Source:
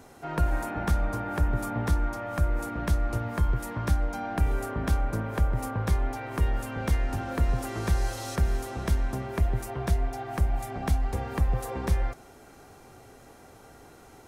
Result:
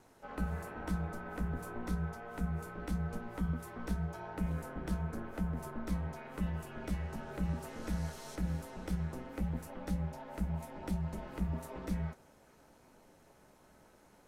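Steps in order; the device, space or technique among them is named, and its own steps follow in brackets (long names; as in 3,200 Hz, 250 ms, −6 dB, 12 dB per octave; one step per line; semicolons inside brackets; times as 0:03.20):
alien voice (ring modulation 120 Hz; flanger 0.92 Hz, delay 9.6 ms, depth 6.2 ms, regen −52%)
level −4.5 dB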